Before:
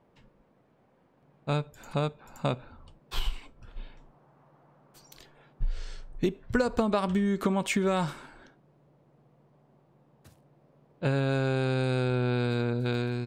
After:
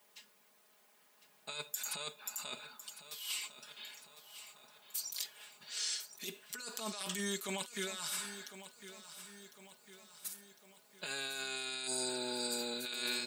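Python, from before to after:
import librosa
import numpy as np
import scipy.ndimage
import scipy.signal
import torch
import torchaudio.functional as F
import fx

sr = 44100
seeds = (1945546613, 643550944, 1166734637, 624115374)

p1 = fx.high_shelf(x, sr, hz=3100.0, db=7.5)
p2 = fx.spec_repair(p1, sr, seeds[0], start_s=11.89, length_s=0.84, low_hz=920.0, high_hz=4600.0, source='after')
p3 = np.diff(p2, prepend=0.0)
p4 = p3 + 0.95 * np.pad(p3, (int(4.8 * sr / 1000.0), 0))[:len(p3)]
p5 = fx.over_compress(p4, sr, threshold_db=-47.0, ratio=-1.0)
p6 = scipy.signal.sosfilt(scipy.signal.butter(4, 140.0, 'highpass', fs=sr, output='sos'), p5)
p7 = p6 + fx.echo_feedback(p6, sr, ms=1054, feedback_pct=52, wet_db=-13, dry=0)
y = p7 * 10.0 ** (6.0 / 20.0)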